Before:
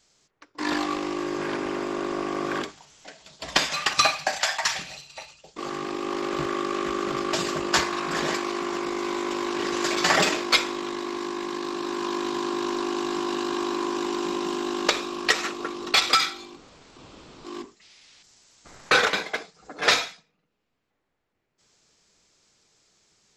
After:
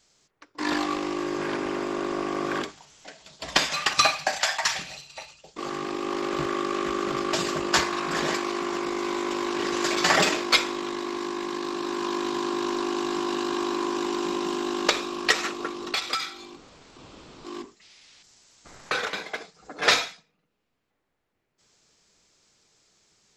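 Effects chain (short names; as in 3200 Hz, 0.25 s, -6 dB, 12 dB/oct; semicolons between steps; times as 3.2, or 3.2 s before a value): 15.68–19.41 compressor 2:1, threshold -31 dBFS, peak gain reduction 9.5 dB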